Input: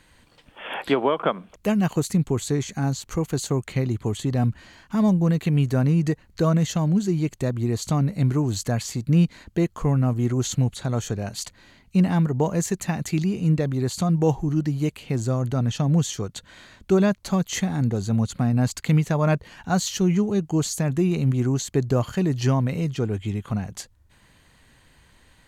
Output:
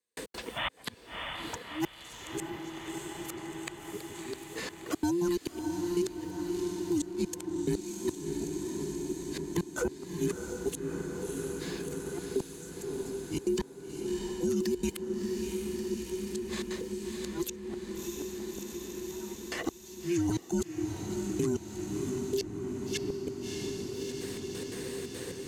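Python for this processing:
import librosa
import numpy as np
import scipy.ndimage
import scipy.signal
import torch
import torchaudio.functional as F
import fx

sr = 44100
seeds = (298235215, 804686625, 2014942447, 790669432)

p1 = fx.band_invert(x, sr, width_hz=500)
p2 = scipy.signal.sosfilt(scipy.signal.butter(2, 52.0, 'highpass', fs=sr, output='sos'), p1)
p3 = fx.bass_treble(p2, sr, bass_db=2, treble_db=14)
p4 = fx.over_compress(p3, sr, threshold_db=-25.0, ratio=-0.5)
p5 = p3 + (p4 * librosa.db_to_amplitude(0.0))
p6 = fx.gate_flip(p5, sr, shuts_db=-9.0, range_db=-35)
p7 = fx.step_gate(p6, sr, bpm=176, pattern='..x.xxxx.xx', floor_db=-60.0, edge_ms=4.5)
p8 = p7 + fx.echo_diffused(p7, sr, ms=652, feedback_pct=70, wet_db=-8, dry=0)
p9 = fx.band_squash(p8, sr, depth_pct=70)
y = p9 * librosa.db_to_amplitude(-7.5)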